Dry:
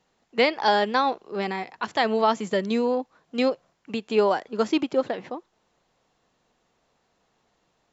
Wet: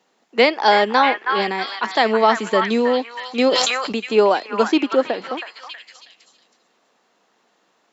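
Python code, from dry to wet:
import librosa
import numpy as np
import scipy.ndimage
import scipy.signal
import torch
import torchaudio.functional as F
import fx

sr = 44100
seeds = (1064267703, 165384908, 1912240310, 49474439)

y = scipy.signal.sosfilt(scipy.signal.butter(4, 210.0, 'highpass', fs=sr, output='sos'), x)
y = fx.echo_stepped(y, sr, ms=321, hz=1400.0, octaves=0.7, feedback_pct=70, wet_db=-1.5)
y = fx.sustainer(y, sr, db_per_s=30.0, at=(3.51, 3.94), fade=0.02)
y = y * 10.0 ** (6.0 / 20.0)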